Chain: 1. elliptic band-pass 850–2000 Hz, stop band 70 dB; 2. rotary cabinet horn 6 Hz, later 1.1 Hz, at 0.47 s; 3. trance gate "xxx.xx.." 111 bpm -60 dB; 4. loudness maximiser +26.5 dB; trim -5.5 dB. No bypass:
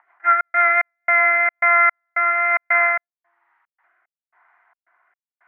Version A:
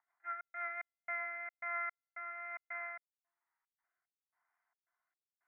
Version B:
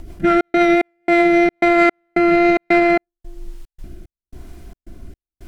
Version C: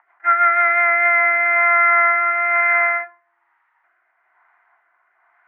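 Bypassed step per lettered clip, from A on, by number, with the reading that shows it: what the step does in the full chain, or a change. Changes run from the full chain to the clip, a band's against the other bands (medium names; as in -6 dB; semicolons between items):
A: 4, crest factor change +3.0 dB; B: 1, momentary loudness spread change -1 LU; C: 3, crest factor change -2.0 dB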